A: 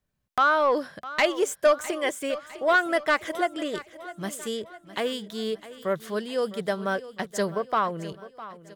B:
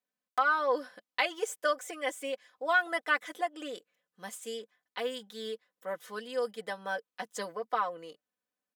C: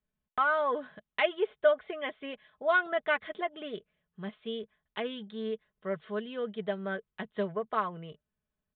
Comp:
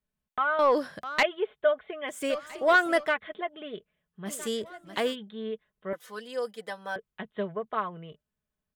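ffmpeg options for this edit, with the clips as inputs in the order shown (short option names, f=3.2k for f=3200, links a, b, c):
-filter_complex "[0:a]asplit=3[a][b][c];[2:a]asplit=5[d][e][f][g][h];[d]atrim=end=0.592[i];[a]atrim=start=0.588:end=1.232[j];[e]atrim=start=1.228:end=2.23[k];[b]atrim=start=2.07:end=3.15[l];[f]atrim=start=2.99:end=4.31[m];[c]atrim=start=4.25:end=5.16[n];[g]atrim=start=5.1:end=5.932[o];[1:a]atrim=start=5.928:end=6.962[p];[h]atrim=start=6.958[q];[i][j]acrossfade=d=0.004:c1=hsin:c2=hsin[r];[r][k]acrossfade=d=0.004:c1=hsin:c2=hsin[s];[s][l]acrossfade=d=0.16:c1=tri:c2=tri[t];[t][m]acrossfade=d=0.16:c1=tri:c2=tri[u];[u][n]acrossfade=d=0.06:c1=tri:c2=tri[v];[v][o]acrossfade=d=0.06:c1=tri:c2=tri[w];[w][p]acrossfade=d=0.004:c1=hsin:c2=hsin[x];[x][q]acrossfade=d=0.004:c1=hsin:c2=hsin"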